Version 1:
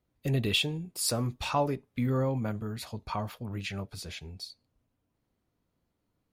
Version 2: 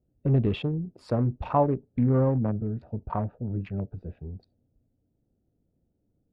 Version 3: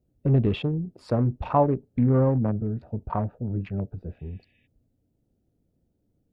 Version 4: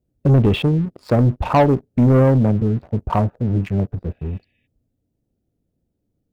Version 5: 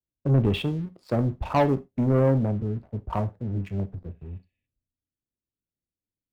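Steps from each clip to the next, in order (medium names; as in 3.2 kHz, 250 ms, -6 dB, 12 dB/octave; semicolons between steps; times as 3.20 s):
local Wiener filter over 41 samples; low-pass 1.1 kHz 12 dB/octave; trim +6.5 dB
spectral replace 4.21–4.64 s, 1.7–3.8 kHz before; trim +2 dB
waveshaping leveller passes 2; trim +2.5 dB
reverberation, pre-delay 3 ms, DRR 11.5 dB; three bands expanded up and down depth 40%; trim -8.5 dB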